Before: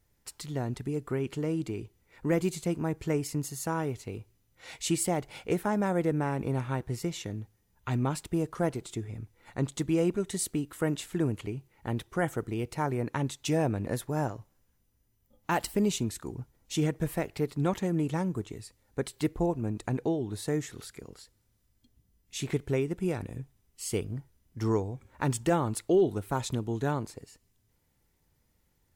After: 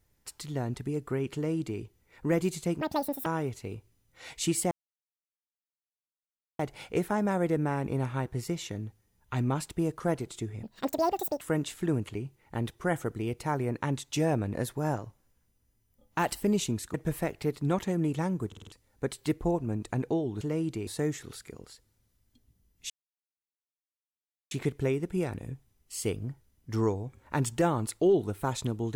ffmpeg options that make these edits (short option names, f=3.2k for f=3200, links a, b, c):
-filter_complex "[0:a]asplit=15[a][b][c][d][e][f][g][h][i][j][k][l][m][n][o];[a]atrim=end=2.814[p];[b]atrim=start=2.81:end=3.69,asetpts=PTS-STARTPTS,asetrate=85995,aresample=44100[q];[c]atrim=start=3.686:end=5.14,asetpts=PTS-STARTPTS,afade=t=out:st=1.45:d=0.004:c=hsin,apad=pad_dur=1.88[r];[d]atrim=start=5.14:end=9.184,asetpts=PTS-STARTPTS,afade=t=in:d=0.004:c=hsin[s];[e]atrim=start=9.18:end=10.73,asetpts=PTS-STARTPTS,asetrate=87759,aresample=44100,atrim=end_sample=34349,asetpts=PTS-STARTPTS[t];[f]atrim=start=10.726:end=16.262[u];[g]atrim=start=16.888:end=18.472[v];[h]atrim=start=18.418:end=18.472[w];[i]atrim=start=18.418:end=18.472[x];[j]atrim=start=18.418:end=18.472[y];[k]atrim=start=18.418:end=18.472[z];[l]atrim=start=18.668:end=20.362[aa];[m]atrim=start=1.338:end=1.802[ab];[n]atrim=start=20.358:end=22.39,asetpts=PTS-STARTPTS,afade=t=out:st=2.028:d=0.004:c=hsin,apad=pad_dur=1.61[ac];[o]atrim=start=22.39,asetpts=PTS-STARTPTS,afade=t=in:d=0.004:c=hsin[ad];[p][q]acrossfade=d=0.004:c1=hsin:c2=hsin[ae];[r][s]concat=n=2:v=0:a=1[af];[ae][af]acrossfade=d=0.004:c1=hsin:c2=hsin[ag];[ag][t]acrossfade=d=0.004:c1=hsin:c2=hsin[ah];[ah][u]acrossfade=d=0.004:c1=hsin:c2=hsin[ai];[ai][v]acrossfade=d=0.004:c1=hsin:c2=hsin[aj];[aj][w]acrossfade=d=0.004:c1=hsin:c2=hsin[ak];[ak][x]acrossfade=d=0.004:c1=hsin:c2=hsin[al];[al][y]acrossfade=d=0.004:c1=hsin:c2=hsin[am];[am][z]acrossfade=d=0.004:c1=hsin:c2=hsin[an];[an][aa]acrossfade=d=0.004:c1=hsin:c2=hsin[ao];[ao][ab]acrossfade=d=0.004:c1=hsin:c2=hsin[ap];[ac][ad]concat=n=2:v=0:a=1[aq];[ap][aq]acrossfade=d=0.004:c1=hsin:c2=hsin"